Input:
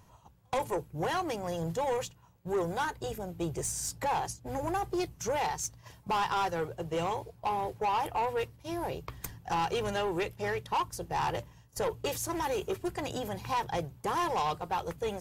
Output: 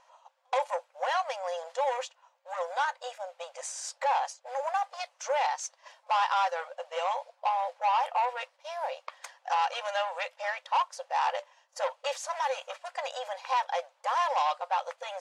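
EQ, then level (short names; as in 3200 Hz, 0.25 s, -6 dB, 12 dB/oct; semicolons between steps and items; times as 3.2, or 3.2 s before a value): brick-wall FIR high-pass 500 Hz; air absorption 69 m; bell 13000 Hz -13 dB 0.4 oct; +4.0 dB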